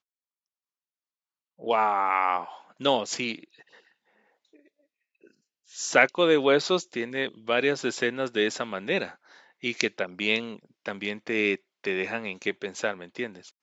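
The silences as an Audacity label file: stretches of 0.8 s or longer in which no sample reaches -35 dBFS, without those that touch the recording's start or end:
3.440000	5.750000	silence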